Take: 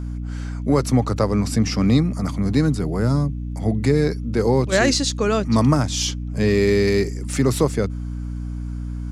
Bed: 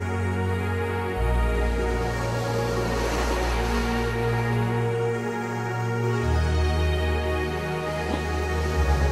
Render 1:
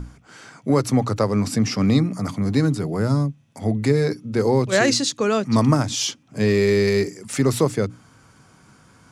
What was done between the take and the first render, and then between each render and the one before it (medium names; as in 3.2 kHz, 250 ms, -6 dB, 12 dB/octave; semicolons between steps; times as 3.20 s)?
hum notches 60/120/180/240/300 Hz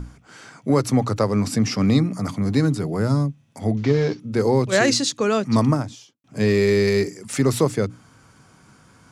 3.77–4.20 s: CVSD coder 32 kbps; 5.50–6.24 s: studio fade out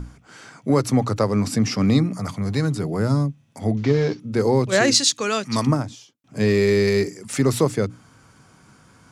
2.18–2.75 s: peaking EQ 270 Hz -8 dB; 4.94–5.67 s: tilt shelf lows -6.5 dB, about 1.2 kHz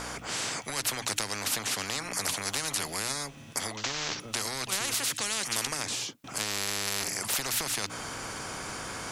compression, threshold -20 dBFS, peak gain reduction 8 dB; spectrum-flattening compressor 10:1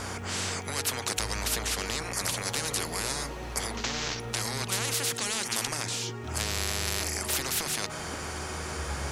add bed -14 dB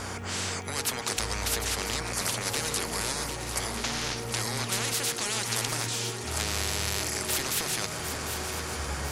shuffle delay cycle 1001 ms, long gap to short 3:1, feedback 49%, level -9 dB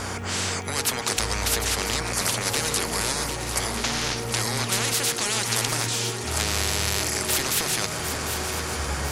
trim +5 dB